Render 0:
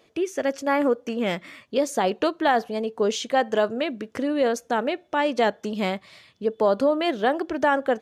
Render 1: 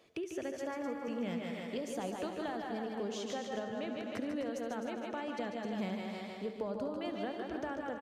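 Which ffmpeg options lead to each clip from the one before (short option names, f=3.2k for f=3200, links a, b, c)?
-filter_complex "[0:a]asplit=2[a][b];[b]aecho=0:1:156|312|468|624|780|936:0.422|0.223|0.118|0.0628|0.0333|0.0176[c];[a][c]amix=inputs=2:normalize=0,acrossover=split=180[d][e];[e]acompressor=threshold=-33dB:ratio=6[f];[d][f]amix=inputs=2:normalize=0,asplit=2[g][h];[h]aecho=0:1:70|143|256:0.178|0.422|0.376[i];[g][i]amix=inputs=2:normalize=0,volume=-6dB"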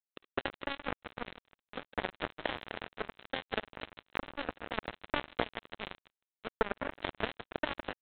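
-af "highpass=320,aresample=8000,acrusher=bits=4:mix=0:aa=0.5,aresample=44100,volume=12.5dB"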